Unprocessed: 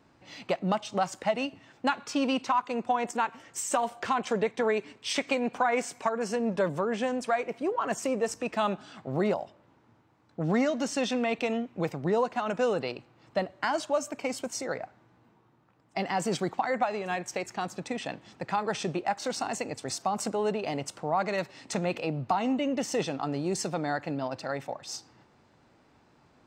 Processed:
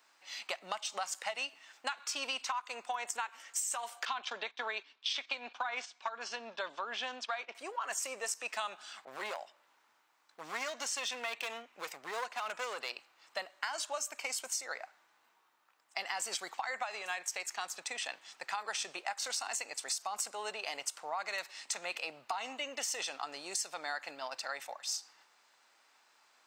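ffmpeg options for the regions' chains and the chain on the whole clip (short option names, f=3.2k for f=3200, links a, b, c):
-filter_complex "[0:a]asettb=1/sr,asplit=3[a][b][c];[a]atrim=end=4.054[d];[b]atrim=start=4.05:end=7.55,asetpts=PTS-STARTPTS,afade=t=in:d=0.004:c=qsin,afade=t=out:st=3.496:d=0.004:c=qsin,highpass=200,equalizer=f=250:t=q:w=4:g=5,equalizer=f=470:t=q:w=4:g=-5,equalizer=f=2k:t=q:w=4:g=-5,equalizer=f=3.5k:t=q:w=4:g=6,lowpass=f=5k:w=0.5412,lowpass=f=5k:w=1.3066,agate=range=-10dB:threshold=-41dB:ratio=16:release=100:detection=peak[e];[c]atrim=start=7.546[f];[d][e]acrossfade=d=0.004:c1=hsin:c2=qsin[g];[g][f]acrossfade=d=0.004:c1=qsin:c2=hsin,asettb=1/sr,asplit=3[h][i][j];[h]atrim=end=9.054[k];[i]atrim=start=9.05:end=12.9,asetpts=PTS-STARTPTS,afade=t=in:d=0.004:c=qsin,afade=t=out:st=3.846:d=0.004:c=qsin,aeval=exprs='clip(val(0),-1,0.0473)':c=same,adynamicequalizer=threshold=0.00355:dfrequency=3300:dqfactor=0.7:tfrequency=3300:tqfactor=0.7:attack=5:release=100:ratio=0.375:range=2:mode=cutabove:tftype=highshelf[l];[j]atrim=start=12.896[m];[k][l]acrossfade=d=0.004:c1=hsin:c2=qsin[n];[n][m]acrossfade=d=0.004:c1=qsin:c2=hsin,highpass=1.1k,highshelf=f=5.2k:g=10,acompressor=threshold=-33dB:ratio=6"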